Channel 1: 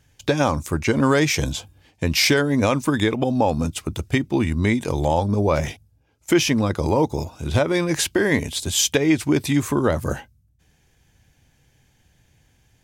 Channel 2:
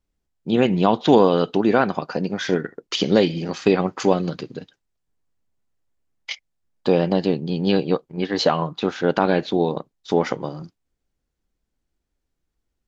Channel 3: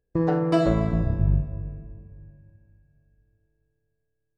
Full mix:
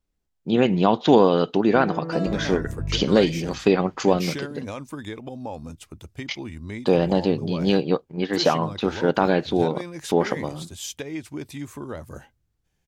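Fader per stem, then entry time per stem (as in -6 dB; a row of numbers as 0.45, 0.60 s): -14.5, -1.0, -8.0 dB; 2.05, 0.00, 1.60 s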